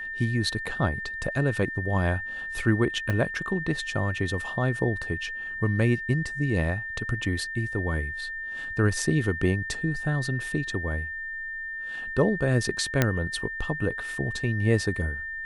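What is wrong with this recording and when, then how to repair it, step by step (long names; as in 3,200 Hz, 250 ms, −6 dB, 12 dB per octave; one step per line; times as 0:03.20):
whistle 1,800 Hz −32 dBFS
0:03.10: click −15 dBFS
0:13.02: click −6 dBFS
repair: click removal
notch filter 1,800 Hz, Q 30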